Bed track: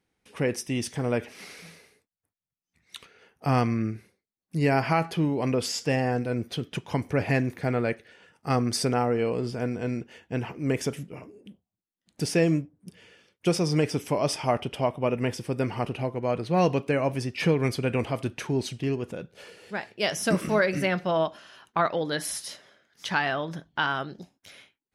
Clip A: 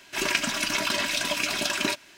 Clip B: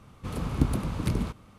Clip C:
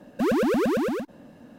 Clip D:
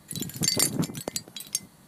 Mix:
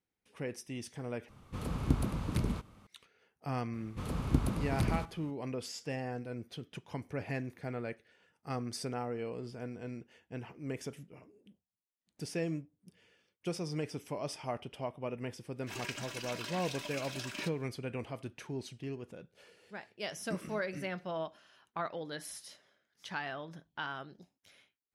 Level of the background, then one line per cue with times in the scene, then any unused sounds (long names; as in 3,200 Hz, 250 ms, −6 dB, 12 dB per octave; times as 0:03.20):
bed track −13 dB
0:01.29: overwrite with B −5 dB
0:03.73: mix in B −4.5 dB
0:15.54: mix in A −16.5 dB, fades 0.10 s
not used: C, D